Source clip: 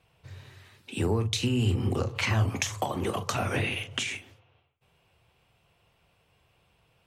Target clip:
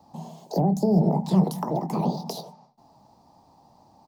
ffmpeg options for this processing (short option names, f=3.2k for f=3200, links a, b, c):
-filter_complex "[0:a]equalizer=f=6.1k:t=o:w=2.4:g=-7.5,asetrate=76440,aresample=44100,acrossover=split=4300[a][b];[a]firequalizer=gain_entry='entry(170,0);entry(870,14);entry(1400,-16)':delay=0.05:min_phase=1[c];[b]acrusher=bits=5:mode=log:mix=0:aa=0.000001[d];[c][d]amix=inputs=2:normalize=0,acrossover=split=310[e][f];[f]acompressor=threshold=-36dB:ratio=10[g];[e][g]amix=inputs=2:normalize=0,volume=7.5dB"